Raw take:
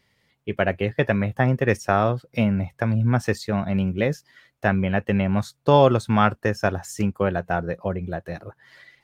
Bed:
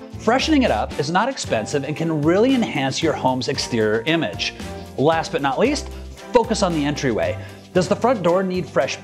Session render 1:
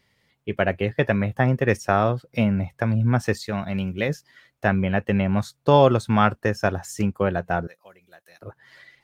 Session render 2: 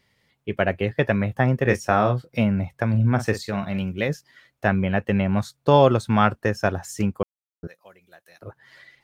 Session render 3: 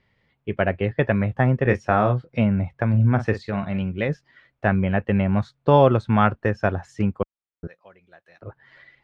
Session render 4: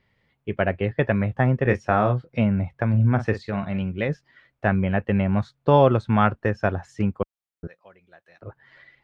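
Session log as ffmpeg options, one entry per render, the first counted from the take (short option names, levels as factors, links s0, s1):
-filter_complex "[0:a]asettb=1/sr,asplit=3[s0][s1][s2];[s0]atrim=end=3.444[s3];[s1]atrim=start=3.44:end=4.09,asetpts=PTS-STARTPTS,afade=t=in:d=0.004:c=qsin,afade=t=out:st=0.646:d=0.004:c=qsin,tiltshelf=f=1500:g=-4[s4];[s2]atrim=start=4.086[s5];[s3][s4]acrossfade=d=0.004:c1=hsin:c2=qsin[s6];[s6][s5]acrossfade=d=0.004:c1=qsin:c2=hsin,asettb=1/sr,asplit=3[s7][s8][s9];[s7]atrim=end=7.674[s10];[s8]atrim=start=7.67:end=8.42,asetpts=PTS-STARTPTS,afade=t=in:d=0.004:c=qsin,afade=t=out:st=0.746:d=0.004:c=qsin,aderivative[s11];[s9]atrim=start=8.416[s12];[s10][s11]acrossfade=d=0.004:c1=hsin:c2=qsin[s13];[s13][s12]acrossfade=d=0.004:c1=qsin:c2=hsin"
-filter_complex "[0:a]asettb=1/sr,asplit=3[s0][s1][s2];[s0]atrim=end=1.634[s3];[s1]atrim=start=1.63:end=2.29,asetpts=PTS-STARTPTS,afade=t=in:d=0.004:c=qsin,afade=t=out:st=0.656:d=0.004:c=qsin,asplit=2[s4][s5];[s5]adelay=24,volume=0.447[s6];[s4][s6]amix=inputs=2:normalize=0,atrim=end_sample=29106[s7];[s2]atrim=start=2.286[s8];[s3][s7]acrossfade=d=0.004:c1=hsin:c2=qsin[s9];[s9][s8]acrossfade=d=0.004:c1=qsin:c2=hsin,asettb=1/sr,asplit=3[s10][s11][s12];[s10]atrim=end=2.894[s13];[s11]atrim=start=2.89:end=3.82,asetpts=PTS-STARTPTS,afade=t=in:d=0.004:c=qsin,afade=t=out:st=0.926:d=0.004:c=qsin,asplit=2[s14][s15];[s15]adelay=45,volume=0.282[s16];[s14][s16]amix=inputs=2:normalize=0,atrim=end_sample=41013[s17];[s12]atrim=start=3.816[s18];[s13][s17]acrossfade=d=0.004:c1=hsin:c2=qsin[s19];[s19][s18]acrossfade=d=0.004:c1=qsin:c2=hsin,asplit=3[s20][s21][s22];[s20]atrim=end=7.23,asetpts=PTS-STARTPTS,afade=t=out:st=7.226:d=0.004:c=hsin[s23];[s21]atrim=start=7.23:end=7.63,asetpts=PTS-STARTPTS,volume=0[s24];[s22]atrim=start=7.63,asetpts=PTS-STARTPTS,afade=t=in:d=0.004:c=hsin[s25];[s23][s24][s25]concat=n=3:v=0:a=1"
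-af "lowpass=2800,lowshelf=f=64:g=8"
-af "volume=0.891"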